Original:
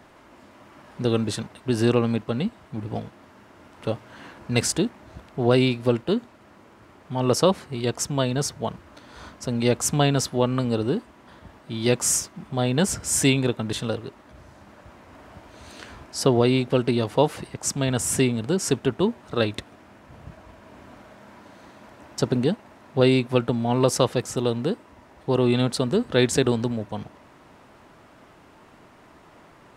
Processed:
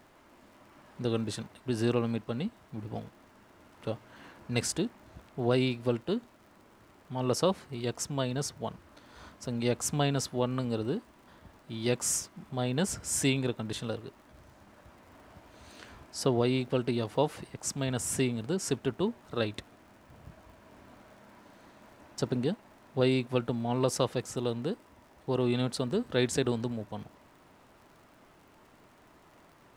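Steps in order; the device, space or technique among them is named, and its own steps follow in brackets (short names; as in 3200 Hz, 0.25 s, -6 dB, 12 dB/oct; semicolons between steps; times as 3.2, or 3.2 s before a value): vinyl LP (crackle 77/s -43 dBFS; pink noise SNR 38 dB); gain -8 dB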